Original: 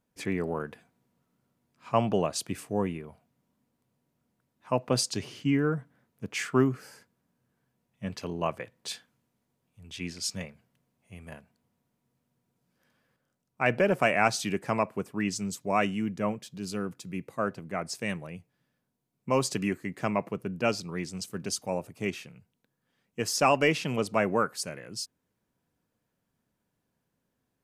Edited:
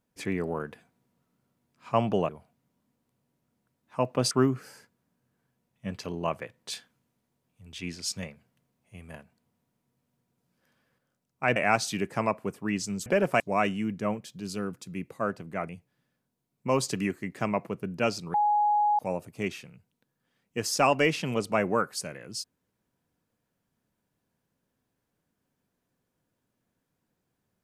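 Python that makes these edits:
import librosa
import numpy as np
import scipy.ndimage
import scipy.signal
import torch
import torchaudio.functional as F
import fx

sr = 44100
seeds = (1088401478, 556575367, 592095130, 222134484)

y = fx.edit(x, sr, fx.cut(start_s=2.29, length_s=0.73),
    fx.cut(start_s=5.04, length_s=1.45),
    fx.move(start_s=13.74, length_s=0.34, to_s=15.58),
    fx.cut(start_s=17.87, length_s=0.44),
    fx.bleep(start_s=20.96, length_s=0.65, hz=834.0, db=-20.5), tone=tone)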